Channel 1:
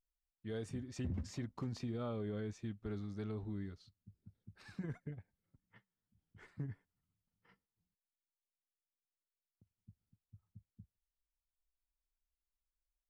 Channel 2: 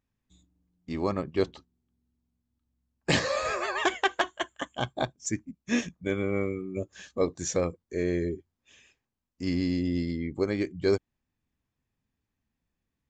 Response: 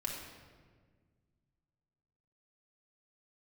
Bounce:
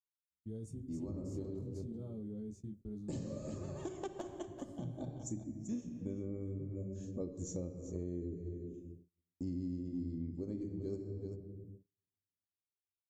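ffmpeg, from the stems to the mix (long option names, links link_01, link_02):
-filter_complex "[0:a]flanger=delay=17.5:depth=6.1:speed=0.18,volume=2.5dB,asplit=3[link_01][link_02][link_03];[link_02]volume=-22dB[link_04];[1:a]agate=range=-14dB:threshold=-55dB:ratio=16:detection=peak,bass=frequency=250:gain=0,treble=frequency=4000:gain=-9,volume=-1.5dB,asplit=3[link_05][link_06][link_07];[link_06]volume=-4.5dB[link_08];[link_07]volume=-12.5dB[link_09];[link_03]apad=whole_len=577550[link_10];[link_05][link_10]sidechaincompress=threshold=-59dB:ratio=8:attack=6.1:release=228[link_11];[2:a]atrim=start_sample=2205[link_12];[link_04][link_08]amix=inputs=2:normalize=0[link_13];[link_13][link_12]afir=irnorm=-1:irlink=0[link_14];[link_09]aecho=0:1:387:1[link_15];[link_01][link_11][link_14][link_15]amix=inputs=4:normalize=0,agate=range=-35dB:threshold=-51dB:ratio=16:detection=peak,firequalizer=gain_entry='entry(170,0);entry(760,-16);entry(1700,-30);entry(6900,0)':delay=0.05:min_phase=1,acompressor=threshold=-39dB:ratio=4"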